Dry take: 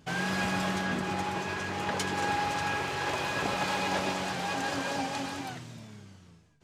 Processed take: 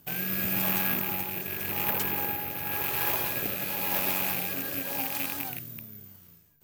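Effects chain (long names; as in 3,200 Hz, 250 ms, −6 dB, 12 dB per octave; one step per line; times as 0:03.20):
loose part that buzzes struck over −40 dBFS, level −22 dBFS
0:01.90–0:02.72: high-shelf EQ 3,500 Hz −7 dB
rotating-speaker cabinet horn 0.9 Hz
high-shelf EQ 11,000 Hz +9 dB
bad sample-rate conversion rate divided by 3×, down none, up zero stuff
level −1.5 dB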